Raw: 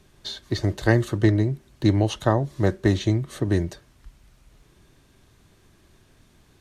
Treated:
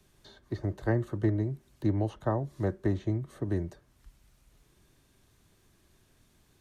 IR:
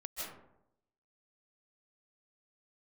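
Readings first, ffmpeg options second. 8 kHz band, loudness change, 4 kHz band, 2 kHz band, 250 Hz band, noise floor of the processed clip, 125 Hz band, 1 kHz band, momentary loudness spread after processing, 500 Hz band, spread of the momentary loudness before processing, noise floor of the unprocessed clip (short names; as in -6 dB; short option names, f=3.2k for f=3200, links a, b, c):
under -15 dB, -8.5 dB, under -20 dB, -13.5 dB, -8.5 dB, -66 dBFS, -8.5 dB, -9.0 dB, 6 LU, -8.5 dB, 8 LU, -58 dBFS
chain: -filter_complex "[0:a]highshelf=f=7.6k:g=8,acrossover=split=200|530|1700[a][b][c][d];[d]acompressor=threshold=-53dB:ratio=4[e];[a][b][c][e]amix=inputs=4:normalize=0,volume=-8.5dB"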